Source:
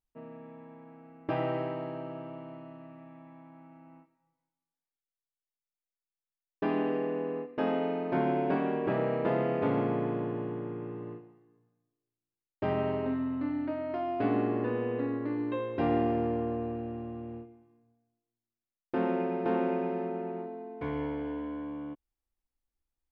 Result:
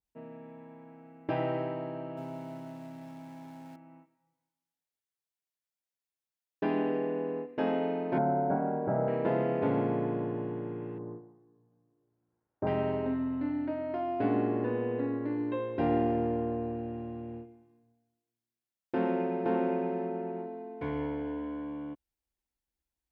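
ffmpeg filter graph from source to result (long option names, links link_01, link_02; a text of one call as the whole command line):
ffmpeg -i in.wav -filter_complex "[0:a]asettb=1/sr,asplit=3[link_01][link_02][link_03];[link_01]atrim=end=2.174[link_04];[link_02]atrim=start=2.17:end=3.76,asetpts=PTS-STARTPTS,afade=type=in:duration=0.004:curve=qsin,afade=type=out:start_time=1.586:duration=0.004:curve=qsin,aeval=exprs='val(0)+0.5*0.00211*sgn(val(0))':channel_layout=same,aecho=1:1:7.4:0.58,atrim=end_sample=70119[link_05];[link_03]atrim=start=3.756[link_06];[link_04][link_05]acrossfade=duration=0.004:curve1=hsin:curve2=qsin[link_07];[link_07][link_06]acrossfade=duration=0.004:curve1=qsin:curve2=hsin,asettb=1/sr,asplit=3[link_08][link_09][link_10];[link_08]atrim=end=8.184[link_11];[link_09]atrim=start=8.18:end=9.08,asetpts=PTS-STARTPTS,afade=type=in:duration=0.004:curve=qsin,afade=type=out:start_time=0.896:duration=0.004:curve=qsin,lowpass=frequency=1400:width=0.5412,lowpass=frequency=1400:width=1.3066,aecho=1:1:1.4:0.52,atrim=end_sample=39690[link_12];[link_10]atrim=start=9.076[link_13];[link_11][link_12]acrossfade=duration=0.004:curve1=hsin:curve2=qsin[link_14];[link_14][link_13]acrossfade=duration=0.004:curve1=qsin:curve2=hsin,asettb=1/sr,asplit=3[link_15][link_16][link_17];[link_15]atrim=end=10.984[link_18];[link_16]atrim=start=10.98:end=12.67,asetpts=PTS-STARTPTS,afade=type=in:duration=0.004:curve=qsin,afade=type=out:start_time=1.686:duration=0.004:curve=qsin,lowpass=frequency=1300:width=0.5412,lowpass=frequency=1300:width=1.3066,acompressor=mode=upward:threshold=-60dB:ratio=2.5:attack=3.2:release=140:knee=2.83:detection=peak[link_19];[link_17]atrim=start=12.666[link_20];[link_18][link_19]acrossfade=duration=0.004:curve1=hsin:curve2=qsin[link_21];[link_21][link_20]acrossfade=duration=0.004:curve1=qsin:curve2=hsin,highpass=41,bandreject=frequency=1200:width=8,adynamicequalizer=threshold=0.00562:dfrequency=1800:dqfactor=0.7:tfrequency=1800:tqfactor=0.7:attack=5:release=100:ratio=0.375:range=2:mode=cutabove:tftype=highshelf" out.wav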